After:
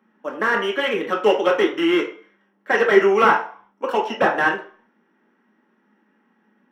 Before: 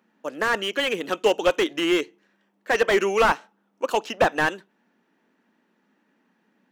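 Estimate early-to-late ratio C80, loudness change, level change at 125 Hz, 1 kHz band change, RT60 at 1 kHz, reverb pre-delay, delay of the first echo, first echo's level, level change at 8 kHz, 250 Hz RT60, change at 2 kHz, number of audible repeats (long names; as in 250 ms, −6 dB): 13.5 dB, +3.5 dB, +1.0 dB, +4.5 dB, 0.50 s, 3 ms, no echo audible, no echo audible, can't be measured, 0.40 s, +4.0 dB, no echo audible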